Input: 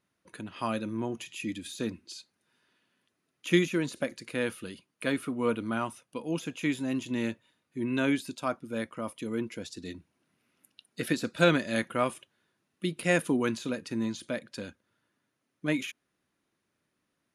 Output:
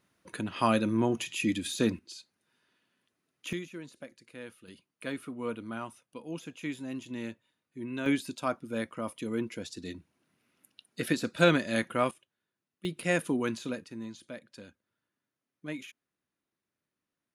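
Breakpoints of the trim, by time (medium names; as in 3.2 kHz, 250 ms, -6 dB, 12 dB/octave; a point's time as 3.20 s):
+6 dB
from 1.99 s -2 dB
from 3.53 s -14 dB
from 4.68 s -7 dB
from 8.06 s 0 dB
from 12.11 s -12.5 dB
from 12.85 s -2.5 dB
from 13.84 s -9.5 dB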